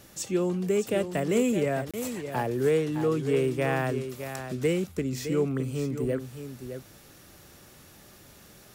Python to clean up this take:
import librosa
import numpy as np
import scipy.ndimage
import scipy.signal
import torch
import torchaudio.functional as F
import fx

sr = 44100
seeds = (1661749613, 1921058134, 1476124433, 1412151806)

y = fx.fix_declip(x, sr, threshold_db=-15.5)
y = fx.fix_declick_ar(y, sr, threshold=6.5)
y = fx.fix_interpolate(y, sr, at_s=(1.91,), length_ms=26.0)
y = fx.fix_echo_inverse(y, sr, delay_ms=613, level_db=-9.5)